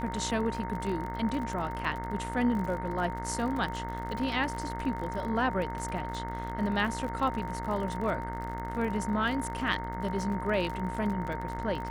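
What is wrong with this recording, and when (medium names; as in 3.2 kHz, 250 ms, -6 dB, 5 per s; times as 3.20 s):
buzz 60 Hz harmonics 36 -38 dBFS
crackle 44 per s -35 dBFS
whine 920 Hz -37 dBFS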